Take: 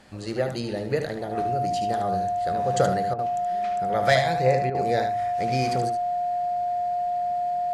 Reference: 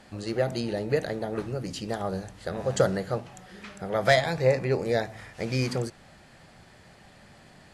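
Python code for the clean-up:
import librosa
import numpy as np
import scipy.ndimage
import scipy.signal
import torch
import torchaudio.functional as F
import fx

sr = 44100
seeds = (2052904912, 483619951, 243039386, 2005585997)

y = fx.notch(x, sr, hz=710.0, q=30.0)
y = fx.fix_interpolate(y, sr, at_s=(3.14, 4.7), length_ms=46.0)
y = fx.fix_echo_inverse(y, sr, delay_ms=75, level_db=-8.0)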